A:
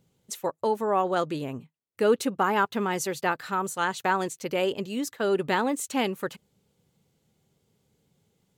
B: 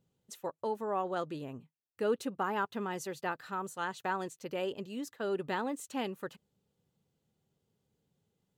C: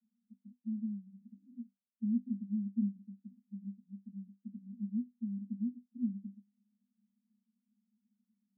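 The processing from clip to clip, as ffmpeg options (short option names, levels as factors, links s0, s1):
-af "equalizer=f=10000:t=o:w=2.3:g=-4,bandreject=f=2200:w=12,volume=0.355"
-af "asuperpass=centerf=220:order=12:qfactor=4.2,volume=2.82"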